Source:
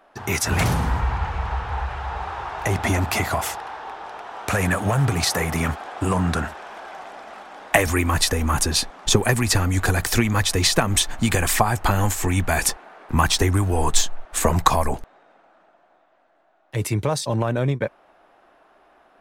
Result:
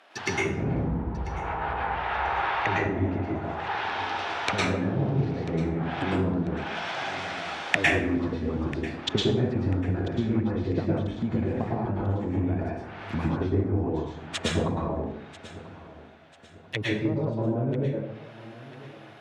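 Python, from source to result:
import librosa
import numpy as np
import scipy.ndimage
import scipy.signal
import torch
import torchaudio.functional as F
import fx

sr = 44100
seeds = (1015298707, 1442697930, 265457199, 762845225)

p1 = scipy.signal.sosfilt(scipy.signal.butter(2, 61.0, 'highpass', fs=sr, output='sos'), x)
p2 = fx.env_lowpass_down(p1, sr, base_hz=350.0, full_db=-20.5)
p3 = 10.0 ** (-21.5 / 20.0) * np.tanh(p2 / 10.0 ** (-21.5 / 20.0))
p4 = p2 + F.gain(torch.from_numpy(p3), -11.0).numpy()
p5 = fx.weighting(p4, sr, curve='D')
p6 = p5 + fx.echo_feedback(p5, sr, ms=992, feedback_pct=38, wet_db=-18.0, dry=0)
p7 = fx.rev_plate(p6, sr, seeds[0], rt60_s=0.7, hf_ratio=0.65, predelay_ms=95, drr_db=-4.5)
y = F.gain(torch.from_numpy(p7), -5.0).numpy()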